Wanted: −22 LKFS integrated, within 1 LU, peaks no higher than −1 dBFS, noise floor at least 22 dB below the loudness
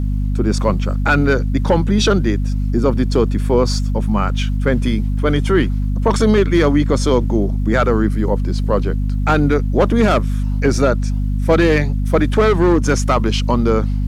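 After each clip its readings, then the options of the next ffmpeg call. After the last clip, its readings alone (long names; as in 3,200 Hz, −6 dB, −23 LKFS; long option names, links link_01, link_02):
mains hum 50 Hz; hum harmonics up to 250 Hz; level of the hum −15 dBFS; integrated loudness −16.5 LKFS; sample peak −2.0 dBFS; target loudness −22.0 LKFS
→ -af "bandreject=frequency=50:width_type=h:width=6,bandreject=frequency=100:width_type=h:width=6,bandreject=frequency=150:width_type=h:width=6,bandreject=frequency=200:width_type=h:width=6,bandreject=frequency=250:width_type=h:width=6"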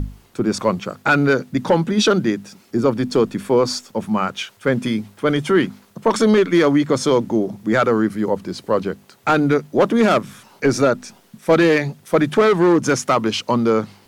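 mains hum none found; integrated loudness −18.5 LKFS; sample peak −4.0 dBFS; target loudness −22.0 LKFS
→ -af "volume=-3.5dB"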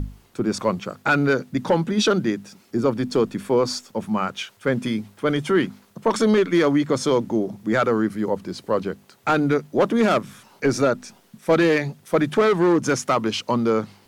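integrated loudness −22.0 LKFS; sample peak −7.5 dBFS; background noise floor −56 dBFS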